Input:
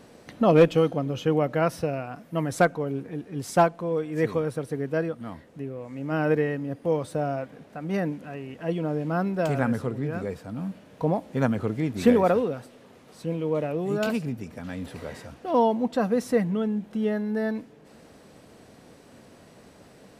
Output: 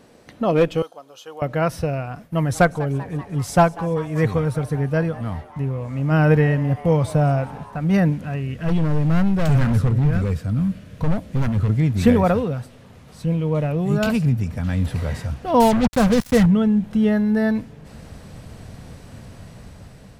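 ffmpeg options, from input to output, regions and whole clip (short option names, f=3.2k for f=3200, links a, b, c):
-filter_complex "[0:a]asettb=1/sr,asplit=3[a][b][c];[a]atrim=end=0.824[d];[b]atrim=start=0.82:end=1.42,asetpts=PTS-STARTPTS,afade=t=in:d=0.004:c=qsin,afade=t=out:st=0.596:d=0.004:c=qsin,highpass=1k,equalizer=f=2.1k:t=o:w=1:g=-14.5[e];[c]atrim=start=1.416[f];[d][e]acrossfade=d=0.004:c1=hsin:c2=qsin[g];[g][f]acrossfade=d=0.004:c1=qsin:c2=hsin,asettb=1/sr,asplit=3[h][i][j];[h]atrim=end=2.134[k];[i]atrim=start=2.13:end=7.78,asetpts=PTS-STARTPTS,afade=t=in:d=0.004:c=qsin,afade=t=out:st=5.646:d=0.004:c=qsin,agate=range=-33dB:threshold=-48dB:ratio=3:release=100:detection=peak,asplit=7[l][m][n][o][p][q][r];[m]adelay=194,afreqshift=140,volume=-19dB[s];[n]adelay=388,afreqshift=280,volume=-22.9dB[t];[o]adelay=582,afreqshift=420,volume=-26.8dB[u];[p]adelay=776,afreqshift=560,volume=-30.6dB[v];[q]adelay=970,afreqshift=700,volume=-34.5dB[w];[r]adelay=1164,afreqshift=840,volume=-38.4dB[x];[l][s][t][u][v][w][x]amix=inputs=7:normalize=0,atrim=end_sample=249165[y];[j]atrim=start=7.776[z];[k][y]acrossfade=d=0.004:c1=hsin:c2=qsin[aa];[aa][z]acrossfade=d=0.004:c1=qsin:c2=hsin,asettb=1/sr,asplit=3[ab][ac][ad];[ab]atrim=end=8.404[ae];[ac]atrim=start=8.4:end=11.69,asetpts=PTS-STARTPTS,afade=t=in:d=0.004:c=qsin,afade=t=out:st=3.286:d=0.004:c=qsin,equalizer=f=850:t=o:w=0.46:g=-11,volume=27.5dB,asoftclip=hard,volume=-27.5dB[af];[ad]atrim=start=11.686[ag];[ae][af]acrossfade=d=0.004:c1=hsin:c2=qsin[ah];[ah][ag]acrossfade=d=0.004:c1=qsin:c2=hsin,asettb=1/sr,asplit=3[ai][aj][ak];[ai]atrim=end=15.604[al];[aj]atrim=start=15.6:end=16.46,asetpts=PTS-STARTPTS,afade=t=in:d=0.004:c=qsin,afade=t=out:st=0.856:d=0.004:c=qsin,acompressor=mode=upward:threshold=-32dB:ratio=2.5:attack=3.2:release=140:knee=2.83:detection=peak,acrusher=bits=4:mix=0:aa=0.5[am];[ak]atrim=start=16.456[an];[al][am]acrossfade=d=0.004:c1=hsin:c2=qsin[ao];[ao][an]acrossfade=d=0.004:c1=qsin:c2=hsin,asubboost=boost=8.5:cutoff=110,dynaudnorm=f=630:g=5:m=8dB"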